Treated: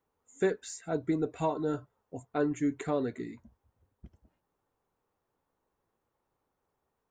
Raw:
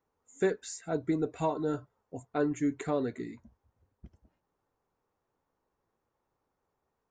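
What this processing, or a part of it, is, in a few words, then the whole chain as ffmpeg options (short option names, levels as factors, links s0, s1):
exciter from parts: -filter_complex "[0:a]asplit=2[s0][s1];[s1]highpass=f=3200:w=0.5412,highpass=f=3200:w=1.3066,asoftclip=type=tanh:threshold=0.015,highpass=f=2700:w=0.5412,highpass=f=2700:w=1.3066,volume=0.224[s2];[s0][s2]amix=inputs=2:normalize=0"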